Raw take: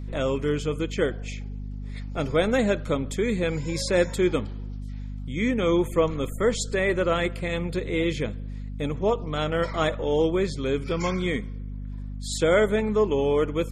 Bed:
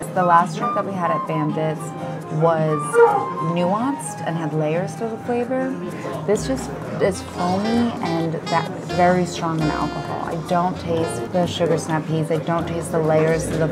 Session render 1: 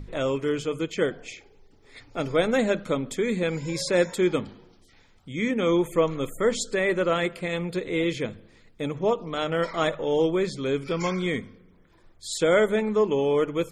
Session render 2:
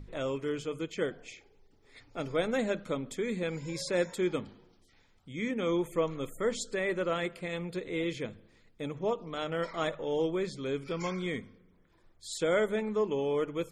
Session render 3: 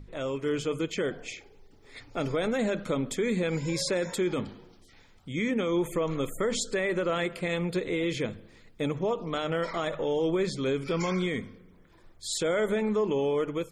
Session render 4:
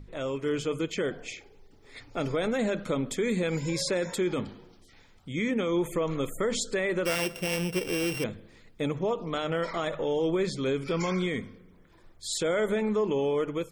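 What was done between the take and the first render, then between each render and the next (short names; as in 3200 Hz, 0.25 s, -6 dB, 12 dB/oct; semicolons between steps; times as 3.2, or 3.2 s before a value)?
notches 50/100/150/200/250 Hz
gain -7.5 dB
AGC gain up to 8 dB; limiter -20 dBFS, peak gain reduction 10.5 dB
3.18–3.7 high shelf 10000 Hz +9.5 dB; 7.05–8.24 sample sorter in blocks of 16 samples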